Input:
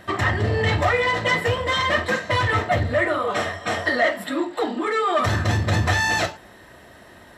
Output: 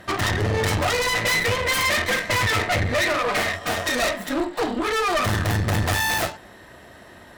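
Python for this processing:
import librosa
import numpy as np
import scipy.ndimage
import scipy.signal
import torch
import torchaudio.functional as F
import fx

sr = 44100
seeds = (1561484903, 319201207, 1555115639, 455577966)

y = fx.tracing_dist(x, sr, depth_ms=0.32)
y = fx.peak_eq(y, sr, hz=2200.0, db=10.0, octaves=0.54, at=(1.12, 3.56))
y = fx.tube_stage(y, sr, drive_db=23.0, bias=0.75)
y = y * librosa.db_to_amplitude(5.5)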